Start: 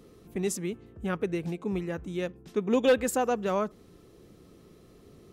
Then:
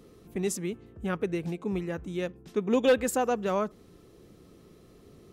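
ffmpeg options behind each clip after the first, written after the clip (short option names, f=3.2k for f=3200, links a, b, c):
-af anull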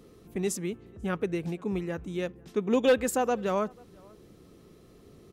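-filter_complex "[0:a]asplit=2[a][b];[b]adelay=489.8,volume=-27dB,highshelf=f=4k:g=-11[c];[a][c]amix=inputs=2:normalize=0"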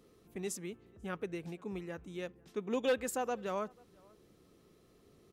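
-af "lowshelf=f=400:g=-5,volume=-7dB"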